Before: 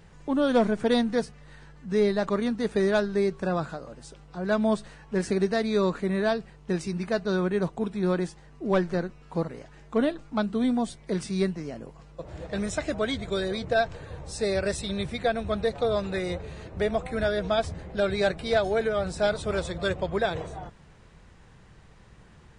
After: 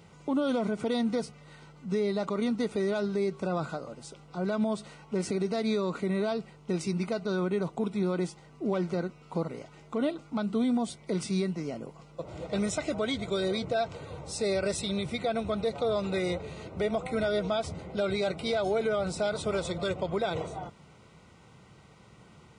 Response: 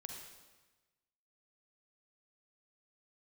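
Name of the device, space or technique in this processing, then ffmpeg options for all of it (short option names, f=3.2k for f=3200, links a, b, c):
PA system with an anti-feedback notch: -af "highpass=110,asuperstop=centerf=1700:order=8:qfactor=5.5,alimiter=limit=-21.5dB:level=0:latency=1:release=66,volume=1dB"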